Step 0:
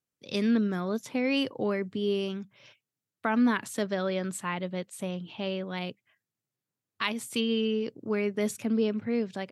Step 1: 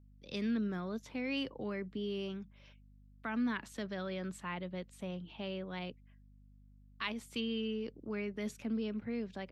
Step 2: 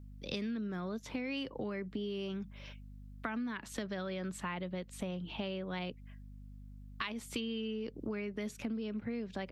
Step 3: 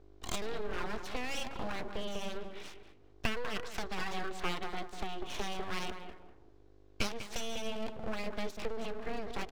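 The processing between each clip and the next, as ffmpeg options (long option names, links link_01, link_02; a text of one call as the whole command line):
ffmpeg -i in.wav -filter_complex "[0:a]acrossover=split=240|1300|4100[link_01][link_02][link_03][link_04];[link_02]alimiter=level_in=5.5dB:limit=-24dB:level=0:latency=1:release=25,volume=-5.5dB[link_05];[link_01][link_05][link_03][link_04]amix=inputs=4:normalize=0,aeval=exprs='val(0)+0.00251*(sin(2*PI*50*n/s)+sin(2*PI*2*50*n/s)/2+sin(2*PI*3*50*n/s)/3+sin(2*PI*4*50*n/s)/4+sin(2*PI*5*50*n/s)/5)':channel_layout=same,equalizer=frequency=10000:width_type=o:width=1:gain=-11.5,volume=-7dB" out.wav
ffmpeg -i in.wav -af "acompressor=threshold=-45dB:ratio=12,volume=10dB" out.wav
ffmpeg -i in.wav -filter_complex "[0:a]highpass=frequency=140:width=0.5412,highpass=frequency=140:width=1.3066,equalizer=frequency=340:width_type=q:width=4:gain=-8,equalizer=frequency=1300:width_type=q:width=4:gain=9,equalizer=frequency=3800:width_type=q:width=4:gain=4,lowpass=frequency=6000:width=0.5412,lowpass=frequency=6000:width=1.3066,asplit=2[link_01][link_02];[link_02]adelay=197,lowpass=frequency=950:poles=1,volume=-6dB,asplit=2[link_03][link_04];[link_04]adelay=197,lowpass=frequency=950:poles=1,volume=0.37,asplit=2[link_05][link_06];[link_06]adelay=197,lowpass=frequency=950:poles=1,volume=0.37,asplit=2[link_07][link_08];[link_08]adelay=197,lowpass=frequency=950:poles=1,volume=0.37[link_09];[link_01][link_03][link_05][link_07][link_09]amix=inputs=5:normalize=0,aeval=exprs='abs(val(0))':channel_layout=same,volume=4dB" out.wav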